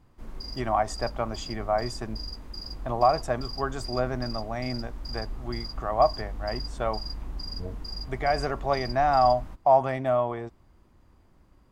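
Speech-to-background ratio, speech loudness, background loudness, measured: 11.0 dB, −27.5 LKFS, −38.5 LKFS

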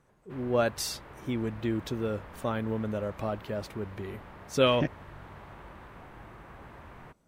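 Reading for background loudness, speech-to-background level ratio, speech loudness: −48.5 LKFS, 17.0 dB, −31.5 LKFS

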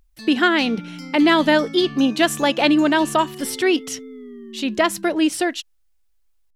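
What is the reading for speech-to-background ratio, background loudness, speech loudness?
16.5 dB, −35.5 LKFS, −19.0 LKFS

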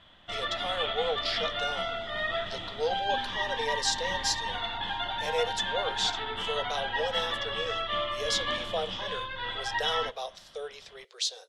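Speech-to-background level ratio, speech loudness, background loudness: −2.5 dB, −34.0 LKFS, −31.5 LKFS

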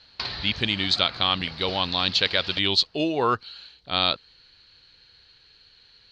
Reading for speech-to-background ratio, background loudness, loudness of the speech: 12.5 dB, −36.0 LKFS, −23.5 LKFS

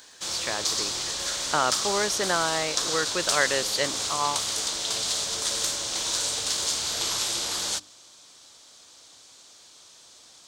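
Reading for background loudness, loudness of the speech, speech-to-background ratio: −26.0 LKFS, −28.5 LKFS, −2.5 dB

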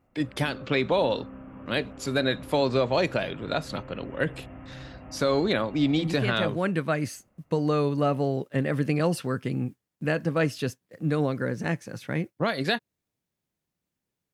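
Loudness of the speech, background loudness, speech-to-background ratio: −27.5 LKFS, −44.5 LKFS, 17.0 dB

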